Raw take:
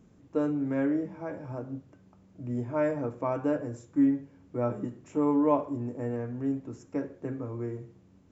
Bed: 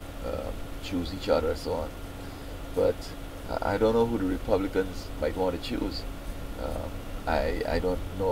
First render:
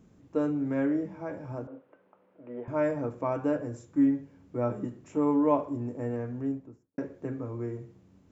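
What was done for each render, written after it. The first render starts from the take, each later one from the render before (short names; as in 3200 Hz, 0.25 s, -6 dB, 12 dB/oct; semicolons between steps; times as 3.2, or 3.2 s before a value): 1.67–2.68 speaker cabinet 430–2800 Hz, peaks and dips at 510 Hz +10 dB, 960 Hz +4 dB, 1400 Hz +4 dB; 6.31–6.98 studio fade out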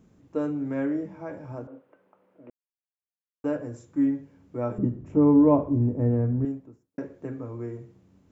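2.5–3.44 mute; 4.78–6.45 tilt -4.5 dB/oct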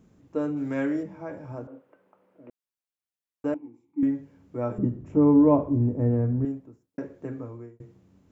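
0.56–1.02 high shelf 2000 Hz -> 2000 Hz +11 dB; 3.54–4.03 vowel filter u; 7.4–7.8 fade out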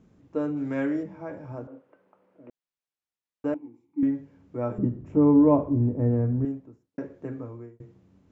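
air absorption 59 m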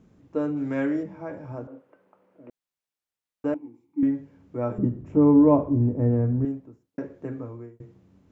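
gain +1.5 dB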